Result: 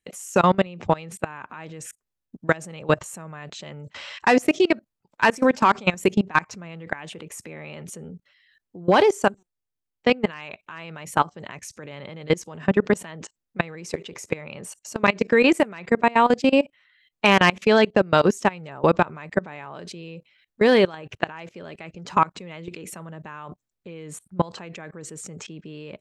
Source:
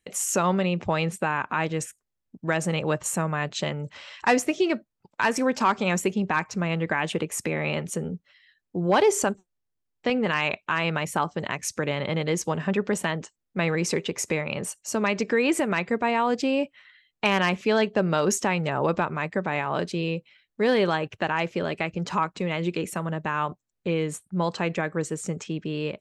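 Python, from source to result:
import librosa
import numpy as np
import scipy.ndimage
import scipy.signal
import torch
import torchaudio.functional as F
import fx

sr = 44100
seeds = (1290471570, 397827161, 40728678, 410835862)

y = fx.level_steps(x, sr, step_db=23)
y = y * librosa.db_to_amplitude(8.0)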